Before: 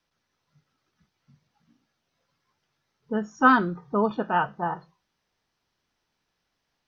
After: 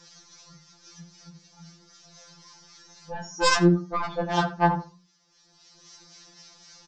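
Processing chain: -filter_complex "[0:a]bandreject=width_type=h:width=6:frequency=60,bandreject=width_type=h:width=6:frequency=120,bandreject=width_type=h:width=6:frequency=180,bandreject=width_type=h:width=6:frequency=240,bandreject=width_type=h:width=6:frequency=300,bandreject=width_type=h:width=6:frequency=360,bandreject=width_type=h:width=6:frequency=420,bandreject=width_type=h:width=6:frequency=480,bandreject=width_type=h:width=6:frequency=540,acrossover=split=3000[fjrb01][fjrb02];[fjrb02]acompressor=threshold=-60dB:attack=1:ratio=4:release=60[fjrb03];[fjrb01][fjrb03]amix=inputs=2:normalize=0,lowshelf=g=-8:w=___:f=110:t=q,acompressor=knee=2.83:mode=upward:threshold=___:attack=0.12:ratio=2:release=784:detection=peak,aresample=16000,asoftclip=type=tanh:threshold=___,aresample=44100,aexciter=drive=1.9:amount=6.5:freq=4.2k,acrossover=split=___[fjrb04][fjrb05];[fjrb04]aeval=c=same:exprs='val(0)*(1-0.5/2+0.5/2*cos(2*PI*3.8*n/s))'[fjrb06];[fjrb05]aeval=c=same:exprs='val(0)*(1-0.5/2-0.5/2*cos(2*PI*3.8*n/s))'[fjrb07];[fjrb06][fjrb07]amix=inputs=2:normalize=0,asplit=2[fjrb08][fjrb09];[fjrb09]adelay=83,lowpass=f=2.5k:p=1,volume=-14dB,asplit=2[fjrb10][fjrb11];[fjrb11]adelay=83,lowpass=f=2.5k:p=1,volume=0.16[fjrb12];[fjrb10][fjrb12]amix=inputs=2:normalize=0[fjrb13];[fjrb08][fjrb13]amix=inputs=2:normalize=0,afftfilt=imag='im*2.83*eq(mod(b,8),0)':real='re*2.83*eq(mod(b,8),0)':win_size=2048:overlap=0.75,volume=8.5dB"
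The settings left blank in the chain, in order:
1.5, -35dB, -20dB, 1200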